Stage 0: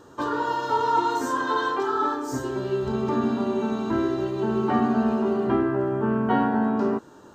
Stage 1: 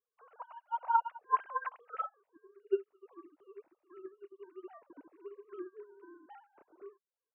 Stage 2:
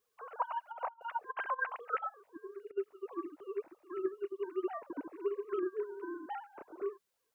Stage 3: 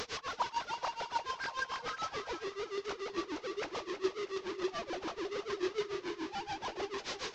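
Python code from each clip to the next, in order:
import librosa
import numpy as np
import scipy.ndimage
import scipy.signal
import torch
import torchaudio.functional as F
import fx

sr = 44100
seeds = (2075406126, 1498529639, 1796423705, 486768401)

y1 = fx.sine_speech(x, sr)
y1 = fx.dereverb_blind(y1, sr, rt60_s=0.6)
y1 = fx.upward_expand(y1, sr, threshold_db=-38.0, expansion=2.5)
y1 = F.gain(torch.from_numpy(y1), -8.5).numpy()
y2 = fx.over_compress(y1, sr, threshold_db=-42.0, ratio=-0.5)
y2 = F.gain(torch.from_numpy(y2), 6.5).numpy()
y3 = fx.delta_mod(y2, sr, bps=32000, step_db=-32.5)
y3 = y3 * (1.0 - 0.97 / 2.0 + 0.97 / 2.0 * np.cos(2.0 * np.pi * 6.9 * (np.arange(len(y3)) / sr)))
y3 = fx.echo_feedback(y3, sr, ms=321, feedback_pct=42, wet_db=-11)
y3 = F.gain(torch.from_numpy(y3), 2.0).numpy()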